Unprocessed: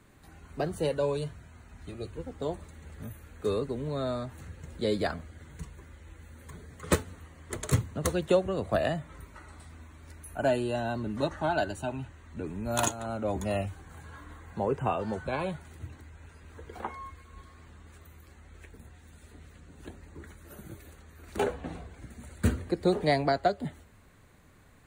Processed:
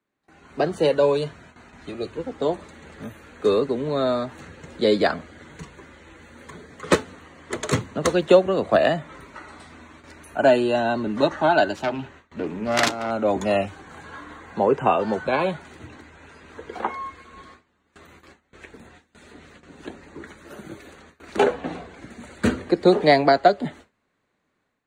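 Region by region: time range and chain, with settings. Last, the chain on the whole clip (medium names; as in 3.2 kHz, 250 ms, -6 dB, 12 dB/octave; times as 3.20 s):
11.75–13.11 s: self-modulated delay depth 0.64 ms + hum notches 50/100/150/200/250/300/350/400 Hz + decimation joined by straight lines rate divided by 2×
whole clip: gate with hold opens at -42 dBFS; three-band isolator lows -17 dB, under 180 Hz, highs -18 dB, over 6.9 kHz; level rider gain up to 8.5 dB; trim +2 dB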